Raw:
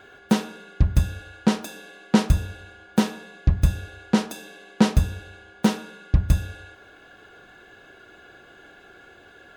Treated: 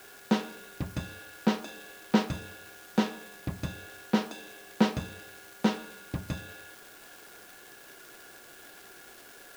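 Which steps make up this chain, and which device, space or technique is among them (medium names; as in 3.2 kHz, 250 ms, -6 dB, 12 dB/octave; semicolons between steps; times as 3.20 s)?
78 rpm shellac record (band-pass 200–4800 Hz; crackle 390 per s -37 dBFS; white noise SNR 21 dB); trim -4 dB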